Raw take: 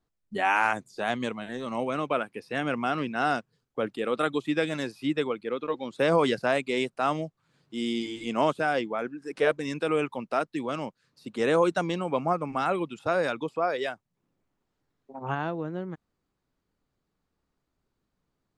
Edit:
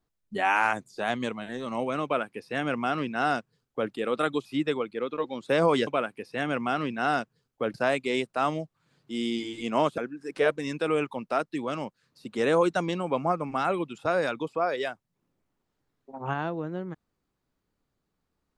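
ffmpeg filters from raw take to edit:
ffmpeg -i in.wav -filter_complex "[0:a]asplit=5[link_01][link_02][link_03][link_04][link_05];[link_01]atrim=end=4.452[link_06];[link_02]atrim=start=4.948:end=6.372[link_07];[link_03]atrim=start=2.038:end=3.912[link_08];[link_04]atrim=start=6.368:end=8.612[link_09];[link_05]atrim=start=8.988[link_10];[link_06][link_07]acrossfade=duration=0.004:curve1=hsin:curve2=hsin[link_11];[link_11][link_08]acrossfade=duration=0.004:curve1=hsin:curve2=hsin[link_12];[link_12][link_09]acrossfade=duration=0.004:curve1=hsin:curve2=hsin[link_13];[link_13][link_10]acrossfade=duration=0.004:curve1=hsin:curve2=hsin" out.wav

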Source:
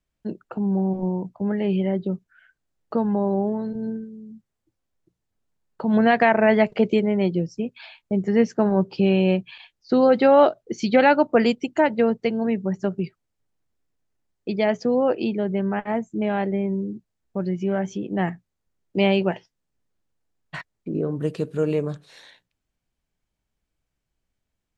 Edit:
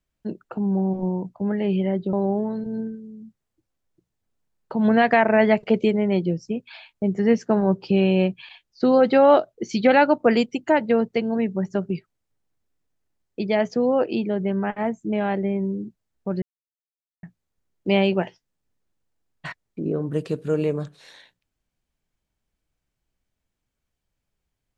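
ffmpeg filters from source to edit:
ffmpeg -i in.wav -filter_complex "[0:a]asplit=4[link_01][link_02][link_03][link_04];[link_01]atrim=end=2.132[link_05];[link_02]atrim=start=3.218:end=17.51,asetpts=PTS-STARTPTS,afade=type=out:start_time=14.288:duration=0.004:curve=hsin[link_06];[link_03]atrim=start=17.51:end=18.32,asetpts=PTS-STARTPTS,volume=0[link_07];[link_04]atrim=start=18.32,asetpts=PTS-STARTPTS,afade=type=in:duration=0.004:curve=hsin[link_08];[link_06][link_07][link_08]concat=n=3:v=0:a=1[link_09];[link_05][link_09]acrossfade=duration=0.004:curve1=hsin:curve2=hsin" out.wav

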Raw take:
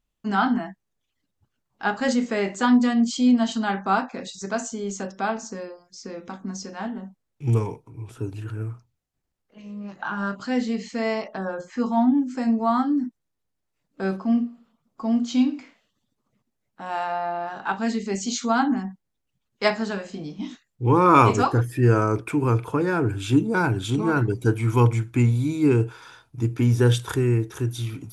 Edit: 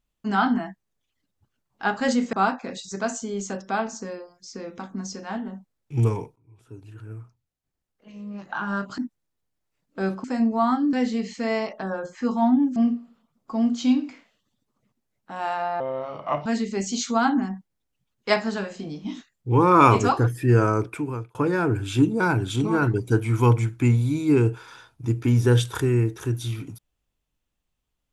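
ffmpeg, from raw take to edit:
ffmpeg -i in.wav -filter_complex "[0:a]asplit=10[link_01][link_02][link_03][link_04][link_05][link_06][link_07][link_08][link_09][link_10];[link_01]atrim=end=2.332[link_11];[link_02]atrim=start=3.828:end=7.86,asetpts=PTS-STARTPTS,afade=type=out:start_time=4.028:duration=0.004:curve=hsin:silence=0.0707946[link_12];[link_03]atrim=start=7.86:end=10.482,asetpts=PTS-STARTPTS,afade=type=in:duration=2.08:silence=0.0707946[link_13];[link_04]atrim=start=12.998:end=14.262[link_14];[link_05]atrim=start=12.308:end=13.002[link_15];[link_06]atrim=start=10.478:end=12.312[link_16];[link_07]atrim=start=14.258:end=17.304[link_17];[link_08]atrim=start=17.3:end=17.8,asetpts=PTS-STARTPTS,asetrate=33516,aresample=44100,atrim=end_sample=29013,asetpts=PTS-STARTPTS[link_18];[link_09]atrim=start=17.796:end=22.69,asetpts=PTS-STARTPTS,afade=type=out:start_time=4.294:duration=0.6[link_19];[link_10]atrim=start=22.69,asetpts=PTS-STARTPTS,afade=type=in:duration=0.004:curve=hsin[link_20];[link_12][link_13]concat=n=2:v=0:a=1[link_21];[link_11][link_21]acrossfade=duration=0.004:curve1=hsin:curve2=hsin[link_22];[link_22][link_14]acrossfade=duration=0.004:curve1=hsin:curve2=hsin[link_23];[link_23][link_15]acrossfade=duration=0.004:curve1=hsin:curve2=hsin[link_24];[link_24][link_16]acrossfade=duration=0.004:curve1=hsin:curve2=hsin[link_25];[link_25][link_17]acrossfade=duration=0.004:curve1=hsin:curve2=hsin[link_26];[link_26][link_18]acrossfade=duration=0.004:curve1=hsin:curve2=hsin[link_27];[link_19][link_20]concat=n=2:v=0:a=1[link_28];[link_27][link_28]acrossfade=duration=0.004:curve1=hsin:curve2=hsin" out.wav

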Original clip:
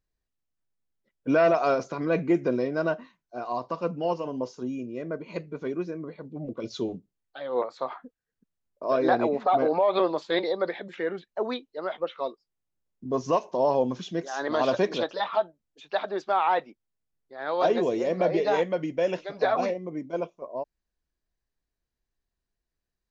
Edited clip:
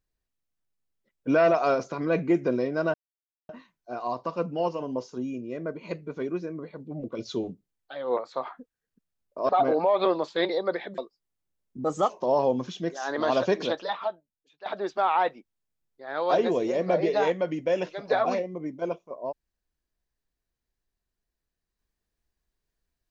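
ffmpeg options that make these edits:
ffmpeg -i in.wav -filter_complex "[0:a]asplit=7[link_01][link_02][link_03][link_04][link_05][link_06][link_07];[link_01]atrim=end=2.94,asetpts=PTS-STARTPTS,afade=type=out:start_time=2.936:duration=0.004:curve=hsin,apad=pad_dur=0.55[link_08];[link_02]atrim=start=2.94:end=8.942,asetpts=PTS-STARTPTS,afade=type=in:duration=0.004:curve=hsin[link_09];[link_03]atrim=start=9.428:end=10.922[link_10];[link_04]atrim=start=12.248:end=13.114[link_11];[link_05]atrim=start=13.11:end=13.41,asetpts=PTS-STARTPTS,asetrate=51597,aresample=44100[link_12];[link_06]atrim=start=13.406:end=15.97,asetpts=PTS-STARTPTS,afade=type=out:start_time=1.714:duration=0.85:curve=qua:silence=0.158489[link_13];[link_07]atrim=start=15.97,asetpts=PTS-STARTPTS,afade=type=in:duration=0.004:curve=hsin:silence=0.158489[link_14];[link_08][link_09]concat=n=2:v=0:a=1[link_15];[link_15][link_10]acrossfade=duration=0.004:curve1=hsin:curve2=hsin[link_16];[link_16][link_11]acrossfade=duration=0.004:curve1=hsin:curve2=hsin[link_17];[link_17][link_12]acrossfade=duration=0.004:curve1=hsin:curve2=hsin[link_18];[link_13][link_14]concat=n=2:v=0:a=1[link_19];[link_18][link_19]acrossfade=duration=0.004:curve1=hsin:curve2=hsin" out.wav

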